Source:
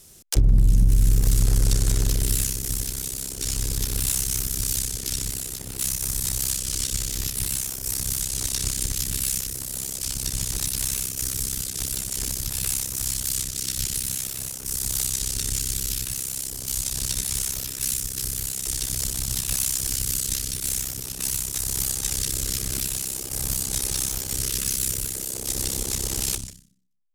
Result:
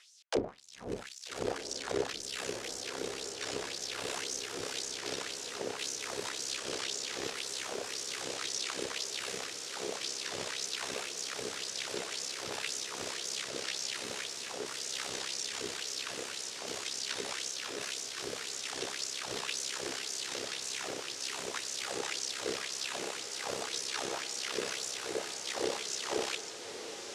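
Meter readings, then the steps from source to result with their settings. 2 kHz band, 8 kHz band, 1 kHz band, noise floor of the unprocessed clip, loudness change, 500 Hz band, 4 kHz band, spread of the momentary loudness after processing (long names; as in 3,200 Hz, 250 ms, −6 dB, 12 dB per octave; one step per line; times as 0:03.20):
+1.0 dB, −14.0 dB, +4.0 dB, −36 dBFS, −12.0 dB, +3.5 dB, −4.5 dB, 3 LU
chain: dynamic equaliser 220 Hz, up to −5 dB, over −40 dBFS, Q 1.4
in parallel at +1 dB: brickwall limiter −17.5 dBFS, peak gain reduction 8.5 dB
on the sum: hard clipping −9.5 dBFS, distortion −20 dB
auto-filter high-pass sine 1.9 Hz 420–6,100 Hz
head-to-tape spacing loss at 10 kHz 30 dB
on a send: feedback delay with all-pass diffusion 1,271 ms, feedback 72%, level −9 dB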